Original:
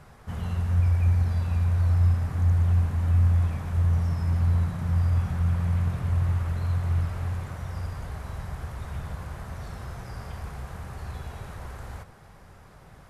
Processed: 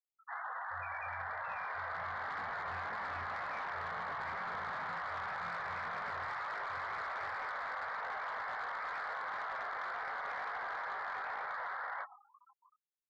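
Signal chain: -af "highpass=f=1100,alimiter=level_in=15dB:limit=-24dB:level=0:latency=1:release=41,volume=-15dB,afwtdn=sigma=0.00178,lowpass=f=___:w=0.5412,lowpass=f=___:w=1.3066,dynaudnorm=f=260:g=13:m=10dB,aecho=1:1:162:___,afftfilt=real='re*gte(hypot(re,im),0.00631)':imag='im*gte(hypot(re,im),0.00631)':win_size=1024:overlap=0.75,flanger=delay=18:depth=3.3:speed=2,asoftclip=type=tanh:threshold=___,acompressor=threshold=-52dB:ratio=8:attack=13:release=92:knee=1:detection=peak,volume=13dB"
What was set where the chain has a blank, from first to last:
2100, 2100, 0.1, -39dB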